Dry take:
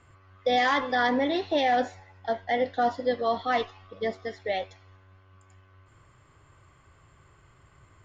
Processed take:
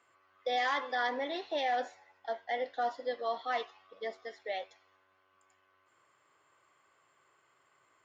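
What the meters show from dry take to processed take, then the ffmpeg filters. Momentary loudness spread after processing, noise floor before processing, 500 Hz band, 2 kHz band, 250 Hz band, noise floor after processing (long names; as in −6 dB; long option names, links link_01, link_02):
12 LU, −59 dBFS, −9.0 dB, −7.0 dB, −16.0 dB, −71 dBFS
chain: -af "highpass=450,volume=-7dB"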